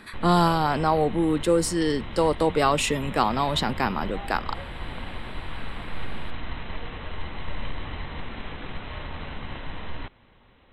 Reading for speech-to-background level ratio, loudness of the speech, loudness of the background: 14.0 dB, −23.5 LKFS, −37.5 LKFS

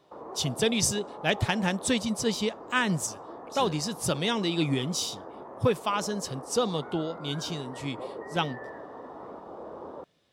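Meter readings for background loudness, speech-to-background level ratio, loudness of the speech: −42.5 LKFS, 13.5 dB, −29.0 LKFS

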